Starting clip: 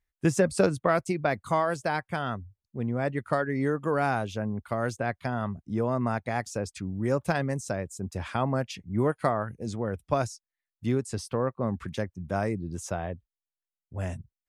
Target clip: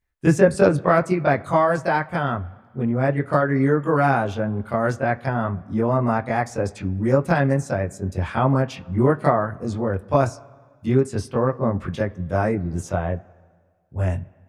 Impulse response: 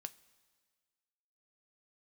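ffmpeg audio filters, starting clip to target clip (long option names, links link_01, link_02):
-filter_complex "[0:a]asplit=2[link_01][link_02];[1:a]atrim=start_sample=2205,lowpass=2100,adelay=22[link_03];[link_02][link_03]afir=irnorm=-1:irlink=0,volume=11.5dB[link_04];[link_01][link_04]amix=inputs=2:normalize=0"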